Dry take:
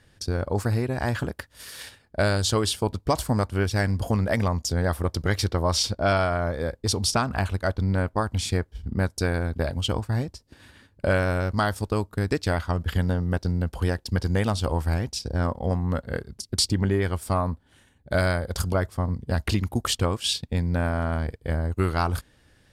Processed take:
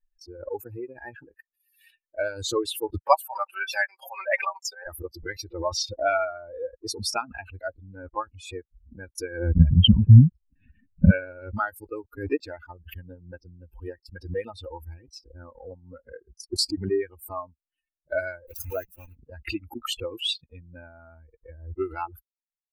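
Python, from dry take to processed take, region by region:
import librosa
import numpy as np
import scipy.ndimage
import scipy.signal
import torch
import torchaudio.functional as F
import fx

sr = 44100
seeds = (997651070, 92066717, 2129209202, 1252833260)

y = fx.chain(x, sr, fx.highpass(hz=580.0, slope=24),
    fx.peak_eq(hz=1100.0, db=3.5, octaves=2.6),
    fx.comb(ms=5.2, depth=0.62), at=(3.02, 4.87))
y = fx.chain(y, sr, fx.lowpass(hz=3500.0, slope=12),
    fx.low_shelf_res(hz=280.0, db=11.0, q=3.0), at=(9.56, 11.11))
y = fx.chain(y, sr, fx.block_float(bits=3),
    fx.hum_notches(base_hz=60, count=3),
    fx.dynamic_eq(hz=6000.0, q=3.5, threshold_db=-49.0, ratio=4.0, max_db=5), at=(18.46, 19.16))
y = fx.bin_expand(y, sr, power=3.0)
y = fx.peak_eq(y, sr, hz=8100.0, db=-7.0, octaves=1.0)
y = fx.pre_swell(y, sr, db_per_s=93.0)
y = F.gain(torch.from_numpy(y), 5.0).numpy()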